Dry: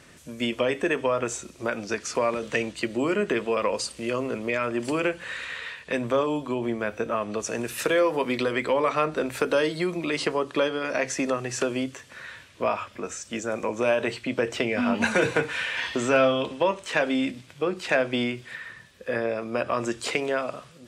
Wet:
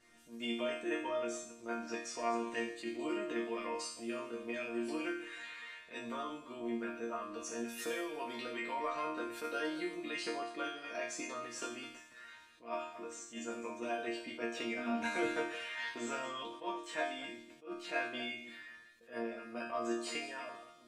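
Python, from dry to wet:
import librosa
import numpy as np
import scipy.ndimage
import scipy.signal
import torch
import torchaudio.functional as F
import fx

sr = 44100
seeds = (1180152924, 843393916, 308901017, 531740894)

y = fx.reverse_delay(x, sr, ms=138, wet_db=-12.0)
y = fx.hpss(y, sr, part='harmonic', gain_db=-4)
y = fx.resonator_bank(y, sr, root=58, chord='sus4', decay_s=0.53)
y = fx.attack_slew(y, sr, db_per_s=200.0)
y = y * librosa.db_to_amplitude(9.0)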